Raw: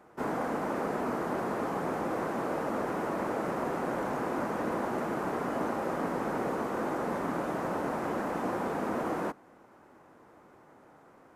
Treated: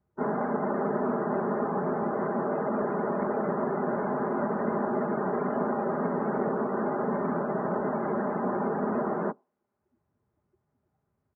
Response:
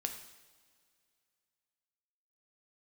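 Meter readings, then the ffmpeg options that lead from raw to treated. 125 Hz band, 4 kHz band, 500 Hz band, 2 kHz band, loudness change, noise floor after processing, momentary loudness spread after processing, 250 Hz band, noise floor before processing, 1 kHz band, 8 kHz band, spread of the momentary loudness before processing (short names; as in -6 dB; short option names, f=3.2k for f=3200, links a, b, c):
+4.5 dB, under -25 dB, +4.5 dB, -0.5 dB, +3.5 dB, -79 dBFS, 1 LU, +4.0 dB, -58 dBFS, +2.0 dB, under -25 dB, 1 LU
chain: -filter_complex "[0:a]highpass=74,afftdn=nr=29:nf=-40,acrossover=split=110|790|4900[a][b][c][d];[a]acompressor=mode=upward:threshold=-59dB:ratio=2.5[e];[b]aecho=1:1:4.9:0.99[f];[e][f][c][d]amix=inputs=4:normalize=0,volume=2dB"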